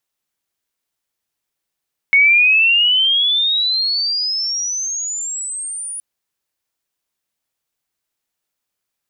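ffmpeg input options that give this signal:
ffmpeg -f lavfi -i "aevalsrc='pow(10,(-7.5-17*t/3.87)/20)*sin(2*PI*2200*3.87/log(9800/2200)*(exp(log(9800/2200)*t/3.87)-1))':duration=3.87:sample_rate=44100" out.wav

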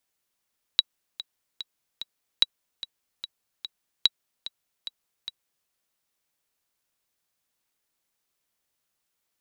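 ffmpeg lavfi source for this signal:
ffmpeg -f lavfi -i "aevalsrc='pow(10,(-4.5-16*gte(mod(t,4*60/147),60/147))/20)*sin(2*PI*3890*mod(t,60/147))*exp(-6.91*mod(t,60/147)/0.03)':duration=4.89:sample_rate=44100" out.wav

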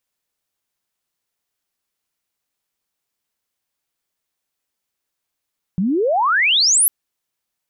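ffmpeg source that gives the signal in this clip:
ffmpeg -f lavfi -i "aevalsrc='pow(10,(-15.5+5*t/1.1)/20)*sin(2*PI*170*1.1/log(12000/170)*(exp(log(12000/170)*t/1.1)-1))':duration=1.1:sample_rate=44100" out.wav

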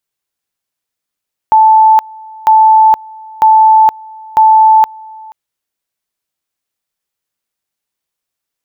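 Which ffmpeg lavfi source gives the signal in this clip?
ffmpeg -f lavfi -i "aevalsrc='pow(10,(-2.5-25.5*gte(mod(t,0.95),0.47))/20)*sin(2*PI*876*t)':duration=3.8:sample_rate=44100" out.wav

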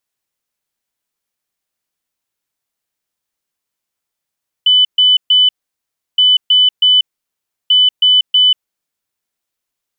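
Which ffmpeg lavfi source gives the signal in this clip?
ffmpeg -f lavfi -i "aevalsrc='0.501*sin(2*PI*3000*t)*clip(min(mod(mod(t,1.52),0.32),0.19-mod(mod(t,1.52),0.32))/0.005,0,1)*lt(mod(t,1.52),0.96)':duration=4.56:sample_rate=44100" out.wav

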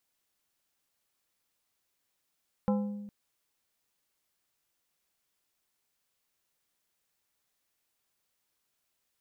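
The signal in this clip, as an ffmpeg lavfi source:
ffmpeg -f lavfi -i "aevalsrc='0.0668*pow(10,-3*t/1.29)*sin(2*PI*205*t)+0.0376*pow(10,-3*t/0.679)*sin(2*PI*512.5*t)+0.0211*pow(10,-3*t/0.489)*sin(2*PI*820*t)+0.0119*pow(10,-3*t/0.418)*sin(2*PI*1025*t)+0.00668*pow(10,-3*t/0.348)*sin(2*PI*1332.5*t)':duration=0.41:sample_rate=44100" out.wav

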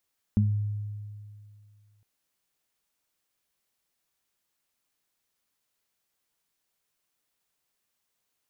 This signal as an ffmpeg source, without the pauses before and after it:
ffmpeg -f lavfi -i "aevalsrc='0.106*pow(10,-3*t/2.32)*sin(2*PI*104*t)+0.126*pow(10,-3*t/0.28)*sin(2*PI*208*t)':duration=1.66:sample_rate=44100" out.wav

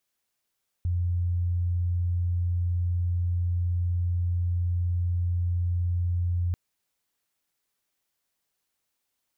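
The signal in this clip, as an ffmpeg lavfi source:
ffmpeg -f lavfi -i "aevalsrc='0.0708*sin(2*PI*87.9*t)':duration=5.69:sample_rate=44100" out.wav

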